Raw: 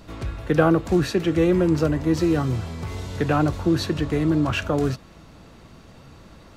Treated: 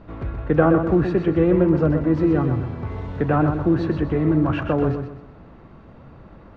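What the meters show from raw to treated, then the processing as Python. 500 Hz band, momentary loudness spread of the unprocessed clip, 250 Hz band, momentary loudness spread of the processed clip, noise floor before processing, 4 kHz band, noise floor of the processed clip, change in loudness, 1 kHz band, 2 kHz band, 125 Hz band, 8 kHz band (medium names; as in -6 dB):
+2.0 dB, 13 LU, +2.0 dB, 12 LU, -47 dBFS, under -10 dB, -45 dBFS, +2.0 dB, +1.5 dB, -1.5 dB, +2.5 dB, under -20 dB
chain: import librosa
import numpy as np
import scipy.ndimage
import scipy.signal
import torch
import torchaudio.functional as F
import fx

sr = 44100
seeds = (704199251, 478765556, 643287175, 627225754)

y = scipy.signal.sosfilt(scipy.signal.butter(2, 1600.0, 'lowpass', fs=sr, output='sos'), x)
y = fx.echo_feedback(y, sr, ms=126, feedback_pct=34, wet_db=-7.5)
y = y * 10.0 ** (1.5 / 20.0)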